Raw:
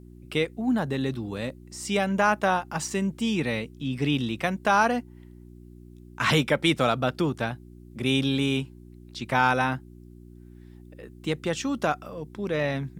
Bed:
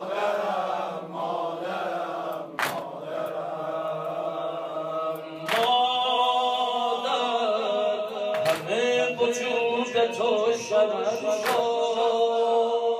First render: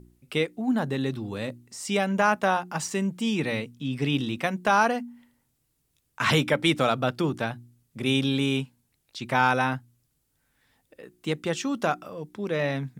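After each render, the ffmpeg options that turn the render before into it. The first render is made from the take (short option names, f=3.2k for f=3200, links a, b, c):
-af "bandreject=f=60:t=h:w=4,bandreject=f=120:t=h:w=4,bandreject=f=180:t=h:w=4,bandreject=f=240:t=h:w=4,bandreject=f=300:t=h:w=4,bandreject=f=360:t=h:w=4"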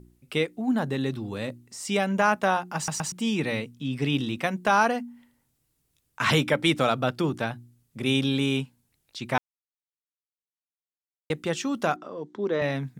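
-filter_complex "[0:a]asettb=1/sr,asplit=3[a][b][c];[a]atrim=end=11.964[d];[b]atrim=start=11.96:end=12.62,asetpts=PTS-STARTPTS,afade=t=in:d=0.004:c=qsin,afade=t=out:st=0.656:d=0.004:c=qsin,highpass=170,equalizer=f=170:t=q:w=4:g=-3,equalizer=f=260:t=q:w=4:g=4,equalizer=f=390:t=q:w=4:g=6,equalizer=f=980:t=q:w=4:g=3,equalizer=f=2.5k:t=q:w=4:g=-10,equalizer=f=5.1k:t=q:w=4:g=-6,lowpass=f=6.1k:w=0.5412,lowpass=f=6.1k:w=1.3066[e];[c]atrim=start=12.616[f];[d][e]acrossfade=d=0.004:c1=hsin:c2=qsin[g];[g][f]acrossfade=d=0.004:c1=qsin:c2=hsin,asplit=6[h][i][j][k][l][m];[h]atrim=end=2.882[n];[i]atrim=start=2.758:end=2.882[o];[j]atrim=start=2.758:end=2.882[p];[k]atrim=start=3.118:end=9.38,asetpts=PTS-STARTPTS,afade=t=out:st=6.258:d=0.004:c=hsin[q];[l]atrim=start=9.38:end=11.3,asetpts=PTS-STARTPTS,volume=0[r];[m]atrim=start=11.3,asetpts=PTS-STARTPTS,afade=t=in:d=0.004:c=hsin[s];[n][o]acrossfade=d=0.004:c1=hsin:c2=hsin[t];[t][p]acrossfade=d=0.004:c1=hsin:c2=hsin[u];[q][r][s]concat=n=3:v=0:a=1[v];[u][v]acrossfade=d=0.004:c1=hsin:c2=hsin"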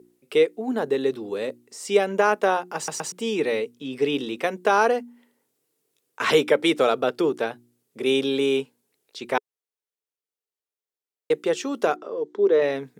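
-af "highpass=290,equalizer=f=430:w=2.5:g=13"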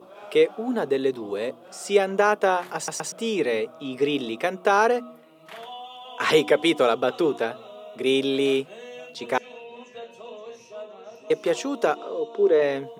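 -filter_complex "[1:a]volume=-17dB[a];[0:a][a]amix=inputs=2:normalize=0"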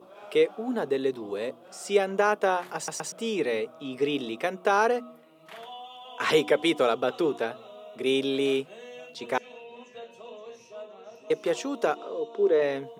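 -af "volume=-3.5dB"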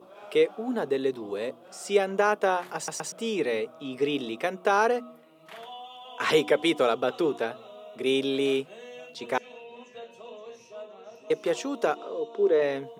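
-af anull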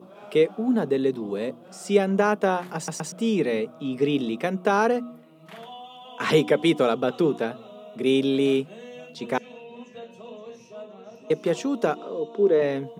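-af "equalizer=f=180:w=1.1:g=13.5"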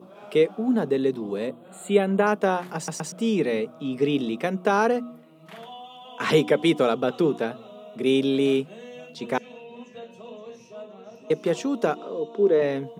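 -filter_complex "[0:a]asettb=1/sr,asplit=3[a][b][c];[a]atrim=end=1.474[d];[b]atrim=start=1.47:end=2.27,asetpts=PTS-STARTPTS,afade=t=in:d=0.004:c=qsin,afade=t=out:st=0.796:d=0.004:c=qsin,asuperstop=centerf=5500:order=12:qfactor=2.1[e];[c]atrim=start=2.266[f];[d][e]acrossfade=d=0.004:c1=hsin:c2=qsin[g];[g][f]acrossfade=d=0.004:c1=qsin:c2=hsin"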